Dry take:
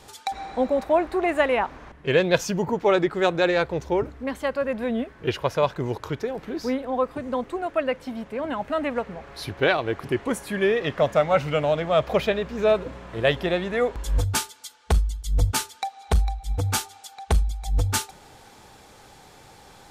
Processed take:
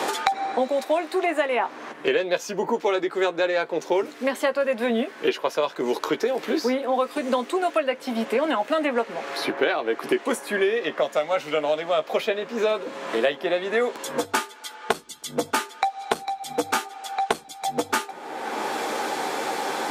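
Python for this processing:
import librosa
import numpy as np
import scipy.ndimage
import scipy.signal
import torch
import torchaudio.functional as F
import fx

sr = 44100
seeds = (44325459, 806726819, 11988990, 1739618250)

y = scipy.signal.sosfilt(scipy.signal.butter(4, 260.0, 'highpass', fs=sr, output='sos'), x)
y = fx.rider(y, sr, range_db=4, speed_s=0.5)
y = fx.doubler(y, sr, ms=13.0, db=-8.0)
y = fx.band_squash(y, sr, depth_pct=100)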